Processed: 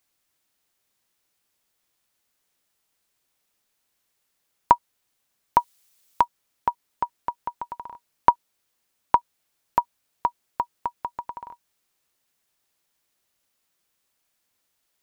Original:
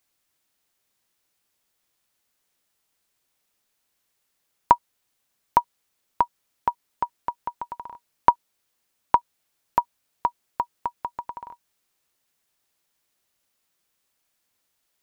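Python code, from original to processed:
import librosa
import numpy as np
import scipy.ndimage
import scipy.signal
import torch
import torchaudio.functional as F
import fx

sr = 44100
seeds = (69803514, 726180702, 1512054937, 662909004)

y = fx.high_shelf(x, sr, hz=2500.0, db=12.0, at=(5.58, 6.23), fade=0.02)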